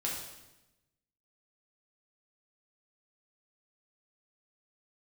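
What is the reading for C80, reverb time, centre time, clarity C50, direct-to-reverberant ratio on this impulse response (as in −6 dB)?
5.0 dB, 1.0 s, 53 ms, 2.5 dB, −4.0 dB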